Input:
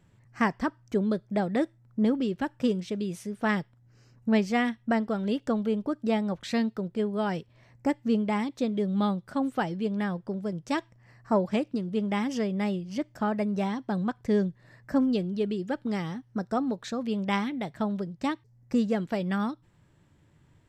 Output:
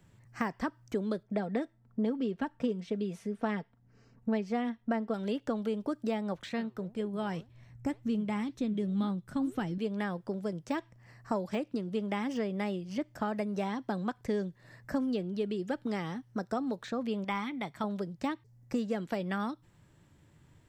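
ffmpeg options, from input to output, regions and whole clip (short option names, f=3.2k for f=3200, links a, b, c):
-filter_complex "[0:a]asettb=1/sr,asplit=3[a][b][c];[a]atrim=end=1.234[d];[b]atrim=start=1.23:end=5.14,asetpts=PTS-STARTPTS,afade=t=in:d=0.004:c=qsin,afade=t=out:st=3.906:d=0.004:c=qsin,lowpass=f=1.6k:p=1,aecho=1:1:4.4:0.49,atrim=end_sample=172431[e];[c]atrim=start=5.136[f];[d][e]acrossfade=d=0.004:c1=hsin:c2=qsin[g];[g][f]acrossfade=d=0.004:c1=qsin:c2=hsin,asettb=1/sr,asplit=3[h][i][j];[h]atrim=end=6.494[k];[i]atrim=start=6.49:end=9.78,asetpts=PTS-STARTPTS,afade=t=in:d=0.004:c=qsin,afade=t=out:st=3.286:d=0.004:c=qsin,bandreject=f=4.7k:w=8.6,asubboost=boost=8.5:cutoff=220,flanger=delay=1.8:depth=6.9:regen=86:speed=1.9:shape=triangular[l];[j]atrim=start=9.776[m];[k][l]acrossfade=d=0.004:c1=hsin:c2=qsin[n];[n][m]acrossfade=d=0.004:c1=qsin:c2=hsin,asettb=1/sr,asplit=3[o][p][q];[o]atrim=end=17.244[r];[p]atrim=start=17.24:end=17.84,asetpts=PTS-STARTPTS,afade=t=in:d=0.004:c=qsin,afade=t=out:st=0.596:d=0.004:c=qsin,lowshelf=f=300:g=-9.5,aecho=1:1:0.9:0.41,atrim=end_sample=26460[s];[q]atrim=start=17.836[t];[r][s]acrossfade=d=0.004:c1=hsin:c2=qsin[u];[u][t]acrossfade=d=0.004:c1=qsin:c2=hsin,deesser=1,highshelf=f=5.7k:g=5,acrossover=split=270|3100[v][w][x];[v]acompressor=threshold=-40dB:ratio=4[y];[w]acompressor=threshold=-31dB:ratio=4[z];[x]acompressor=threshold=-55dB:ratio=4[aa];[y][z][aa]amix=inputs=3:normalize=0"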